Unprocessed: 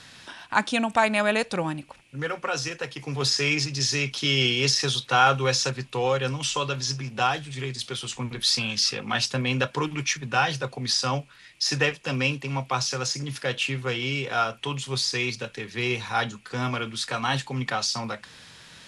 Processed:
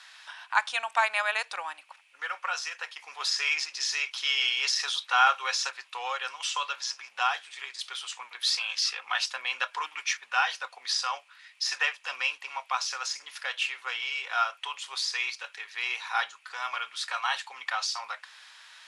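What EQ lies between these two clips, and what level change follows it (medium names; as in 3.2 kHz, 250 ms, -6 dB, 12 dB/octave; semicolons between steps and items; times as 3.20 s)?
high-pass 880 Hz 24 dB/octave; treble shelf 4 kHz -7 dB; 0.0 dB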